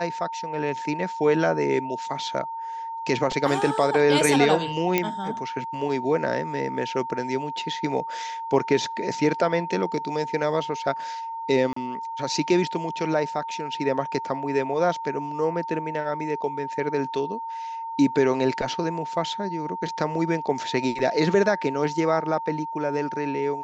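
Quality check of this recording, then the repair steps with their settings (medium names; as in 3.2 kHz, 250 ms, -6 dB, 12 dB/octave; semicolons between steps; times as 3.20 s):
whine 910 Hz -30 dBFS
4.98 s: pop -7 dBFS
11.73–11.76 s: dropout 34 ms
20.99 s: dropout 2.3 ms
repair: de-click; band-stop 910 Hz, Q 30; interpolate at 11.73 s, 34 ms; interpolate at 20.99 s, 2.3 ms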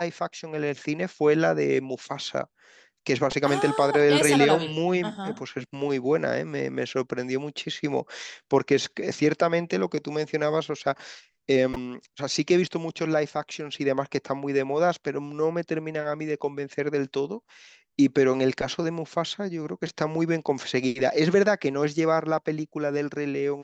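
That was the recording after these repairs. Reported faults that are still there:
nothing left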